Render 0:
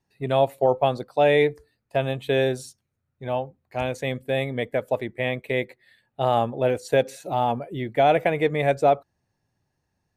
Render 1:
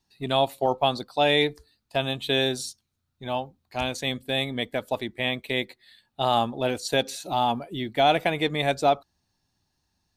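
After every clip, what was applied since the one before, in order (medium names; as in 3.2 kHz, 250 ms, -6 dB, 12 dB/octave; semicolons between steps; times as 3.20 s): ten-band graphic EQ 125 Hz -9 dB, 500 Hz -11 dB, 2 kHz -7 dB, 4 kHz +8 dB; trim +4.5 dB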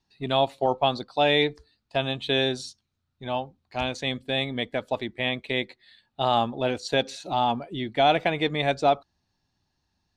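low-pass 5.4 kHz 12 dB/octave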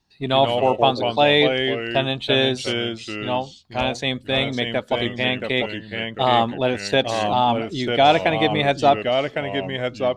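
ever faster or slower copies 96 ms, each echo -2 st, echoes 2, each echo -6 dB; trim +5 dB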